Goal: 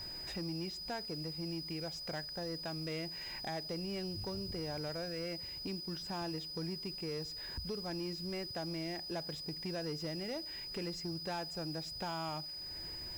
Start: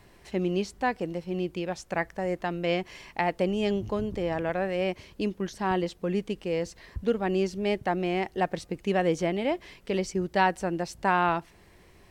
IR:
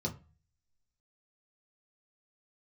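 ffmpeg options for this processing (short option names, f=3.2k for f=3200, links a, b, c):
-filter_complex "[0:a]asplit=2[a][b];[1:a]atrim=start_sample=2205,asetrate=32634,aresample=44100[c];[b][c]afir=irnorm=-1:irlink=0,volume=-23dB[d];[a][d]amix=inputs=2:normalize=0,acompressor=threshold=-46dB:ratio=2.5,aeval=exprs='val(0)+0.00562*sin(2*PI*5400*n/s)':c=same,asoftclip=type=tanh:threshold=-36dB,asetrate=40517,aresample=44100,aeval=exprs='val(0)*gte(abs(val(0)),0.00188)':c=same,volume=3dB"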